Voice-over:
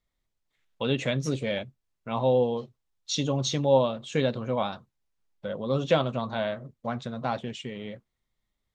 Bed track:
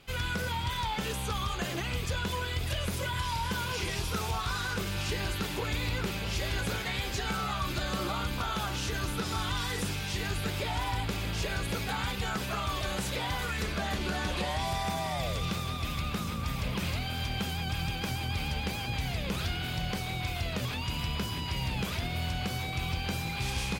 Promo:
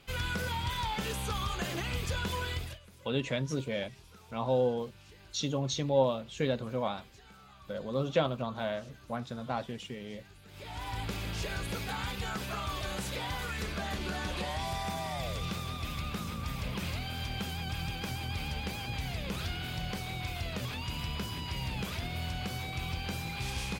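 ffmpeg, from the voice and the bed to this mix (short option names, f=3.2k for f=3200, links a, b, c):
-filter_complex "[0:a]adelay=2250,volume=-5dB[a];[1:a]volume=18dB,afade=t=out:st=2.51:d=0.28:silence=0.0841395,afade=t=in:st=10.47:d=0.61:silence=0.105925[b];[a][b]amix=inputs=2:normalize=0"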